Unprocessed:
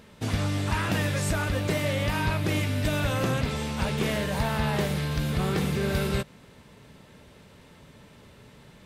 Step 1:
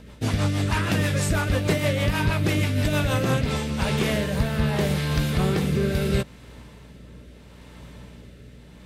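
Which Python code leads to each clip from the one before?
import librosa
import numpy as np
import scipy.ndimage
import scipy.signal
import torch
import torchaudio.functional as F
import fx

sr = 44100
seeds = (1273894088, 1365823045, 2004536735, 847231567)

y = fx.add_hum(x, sr, base_hz=60, snr_db=23)
y = fx.rotary_switch(y, sr, hz=6.3, then_hz=0.75, switch_at_s=3.08)
y = y * 10.0 ** (5.5 / 20.0)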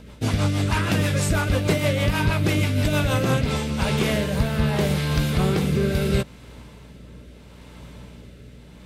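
y = fx.notch(x, sr, hz=1800.0, q=20.0)
y = y * 10.0 ** (1.5 / 20.0)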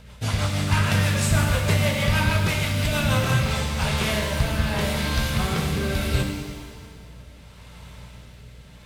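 y = fx.peak_eq(x, sr, hz=310.0, db=-14.0, octaves=1.1)
y = fx.rev_shimmer(y, sr, seeds[0], rt60_s=1.5, semitones=7, shimmer_db=-8, drr_db=2.5)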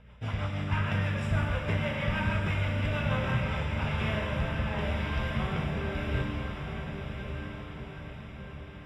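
y = scipy.signal.savgol_filter(x, 25, 4, mode='constant')
y = fx.echo_diffused(y, sr, ms=1170, feedback_pct=51, wet_db=-6)
y = y * 10.0 ** (-8.0 / 20.0)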